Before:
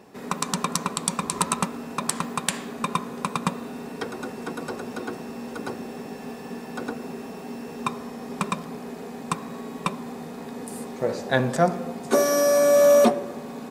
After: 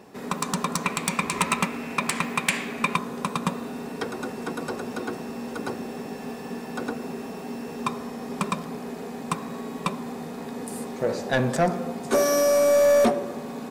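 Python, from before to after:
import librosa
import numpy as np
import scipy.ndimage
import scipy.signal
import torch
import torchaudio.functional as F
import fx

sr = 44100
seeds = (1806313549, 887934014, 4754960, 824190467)

y = 10.0 ** (-15.5 / 20.0) * np.tanh(x / 10.0 ** (-15.5 / 20.0))
y = fx.peak_eq(y, sr, hz=2300.0, db=12.0, octaves=0.67, at=(0.84, 2.96))
y = y * librosa.db_to_amplitude(1.5)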